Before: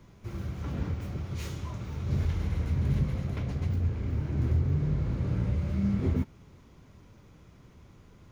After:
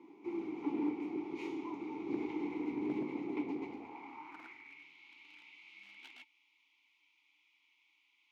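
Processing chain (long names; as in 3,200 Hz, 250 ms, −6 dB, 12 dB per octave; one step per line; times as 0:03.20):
formant filter u
hard clipping −38 dBFS, distortion −18 dB
high-pass filter sweep 390 Hz → 3,000 Hz, 0:03.56–0:04.91
level +11.5 dB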